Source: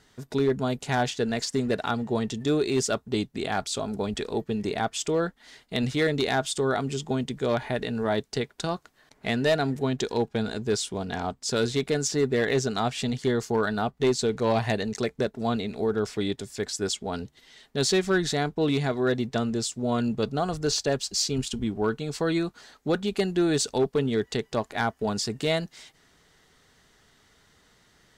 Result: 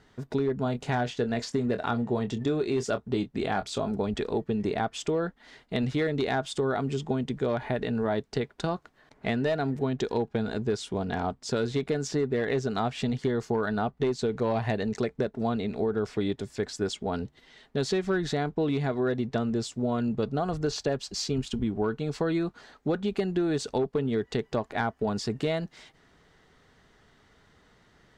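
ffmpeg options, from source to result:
-filter_complex "[0:a]asettb=1/sr,asplit=3[a][b][c];[a]atrim=end=0.634[d];[b]atrim=start=0.63:end=3.91,asetpts=PTS-STARTPTS,afade=t=in:d=0.004:c=qsin,afade=t=out:st=3.276:d=0.004:c=qsin,asplit=2[e][f];[f]adelay=25,volume=-10.5dB[g];[e][g]amix=inputs=2:normalize=0,atrim=end_sample=144648[h];[c]atrim=start=3.906[i];[d][h]acrossfade=d=0.004:c1=hsin:c2=qsin[j];[j][i]acrossfade=d=0.004:c1=qsin:c2=hsin,lowpass=f=1.9k:p=1,acompressor=threshold=-26dB:ratio=6,volume=2.5dB"

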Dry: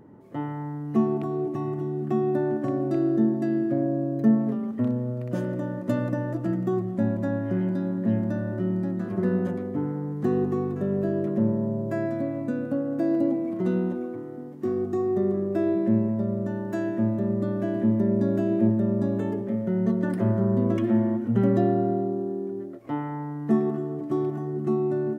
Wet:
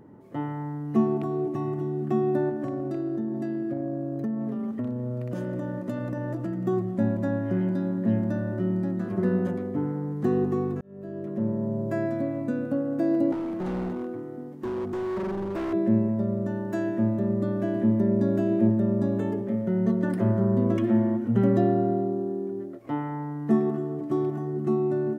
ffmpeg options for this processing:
-filter_complex "[0:a]asettb=1/sr,asplit=3[a][b][c];[a]atrim=end=2.494[d];[b]atrim=start=2.49:end=6.66,asetpts=PTS-STARTPTS,afade=t=in:d=0.004:c=qsin,afade=t=out:st=4.166:d=0.004:c=qsin,acompressor=threshold=-26dB:ratio=6:attack=3.2:release=140:knee=1:detection=peak[e];[c]atrim=start=6.656[f];[d][e]acrossfade=d=0.004:c1=hsin:c2=qsin[g];[g][f]acrossfade=d=0.004:c1=qsin:c2=hsin,asettb=1/sr,asplit=3[h][i][j];[h]atrim=end=13.324[k];[i]atrim=start=13.32:end=15.73,asetpts=PTS-STARTPTS,afade=t=in:d=0.004:c=qsin,afade=t=out:st=2.406:d=0.004:c=qsin,asoftclip=type=hard:threshold=-27.5dB[l];[j]atrim=start=15.726[m];[k][l]acrossfade=d=0.004:c1=hsin:c2=qsin[n];[n][m]acrossfade=d=0.004:c1=qsin:c2=hsin,asplit=2[o][p];[o]atrim=end=10.81,asetpts=PTS-STARTPTS,afade=t=out:st=10.806:d=0.004:c=hsin[q];[p]atrim=start=10.81,asetpts=PTS-STARTPTS,afade=t=in:d=1.02[r];[q][r]concat=n=2:v=0:a=1"

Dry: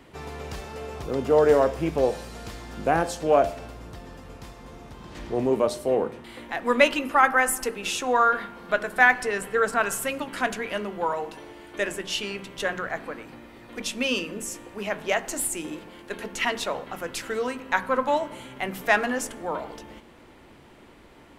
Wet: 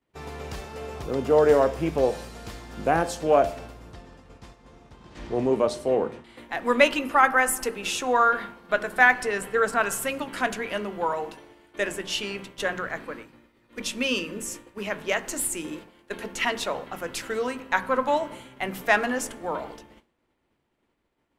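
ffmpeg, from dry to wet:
-filter_complex "[0:a]asettb=1/sr,asplit=3[a][b][c];[a]atrim=end=3.934[d];[b]atrim=start=3.93:end=6.37,asetpts=PTS-STARTPTS,afade=t=in:d=0.004:c=qsin,afade=t=out:st=2.436:d=0.004:c=qsin,lowpass=8.9k[e];[c]atrim=start=6.366[f];[d][e]acrossfade=d=0.004:c1=hsin:c2=qsin[g];[g][f]acrossfade=d=0.004:c1=qsin:c2=hsin,asettb=1/sr,asplit=3[h][i][j];[h]atrim=end=12.854[k];[i]atrim=start=12.85:end=15.8,asetpts=PTS-STARTPTS,afade=t=in:d=0.004:c=qsin,afade=t=out:st=2.946:d=0.004:c=qsin,equalizer=f=730:t=o:w=0.3:g=-7.5[l];[j]atrim=start=15.796[m];[k][l]acrossfade=d=0.004:c1=hsin:c2=qsin[n];[n][m]acrossfade=d=0.004:c1=qsin:c2=hsin,agate=range=-33dB:threshold=-36dB:ratio=3:detection=peak"

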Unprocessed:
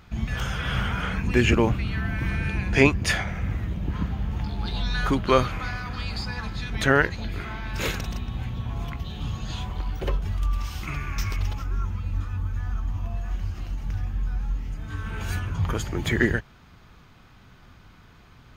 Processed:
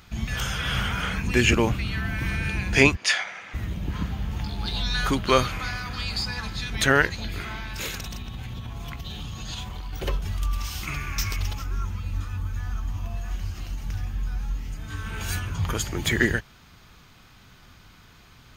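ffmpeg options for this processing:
-filter_complex "[0:a]asplit=3[a][b][c];[a]afade=t=out:st=2.95:d=0.02[d];[b]highpass=700,lowpass=5.9k,afade=t=in:st=2.95:d=0.02,afade=t=out:st=3.53:d=0.02[e];[c]afade=t=in:st=3.53:d=0.02[f];[d][e][f]amix=inputs=3:normalize=0,asettb=1/sr,asplit=3[g][h][i];[g]atrim=end=7.624[j];[h]atrim=start=7.62:end=9.93,asetpts=PTS-STARTPTS,afade=t=in:d=0.004:c=qsin,afade=t=out:st=2.306:d=0.004:c=qsin,acompressor=threshold=-29dB:ratio=6:attack=3.2:release=140:knee=1:detection=peak[k];[i]atrim=start=9.926[l];[j][k]acrossfade=d=0.004:c1=hsin:c2=qsin[m];[m][l]acrossfade=d=0.004:c1=qsin:c2=hsin,highshelf=f=2.8k:g=11,volume=-1.5dB"

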